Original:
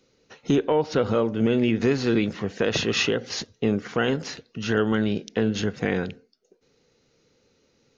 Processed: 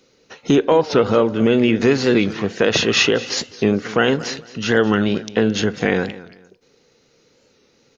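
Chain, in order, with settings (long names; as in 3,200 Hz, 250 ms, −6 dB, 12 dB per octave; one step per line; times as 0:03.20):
low-shelf EQ 170 Hz −7 dB
repeating echo 220 ms, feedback 26%, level −17.5 dB
wow of a warped record 45 rpm, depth 100 cents
level +8 dB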